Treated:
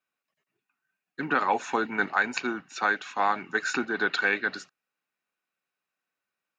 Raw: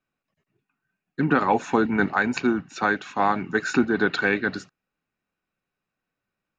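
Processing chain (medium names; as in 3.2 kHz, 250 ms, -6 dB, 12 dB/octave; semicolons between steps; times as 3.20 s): high-pass 900 Hz 6 dB/octave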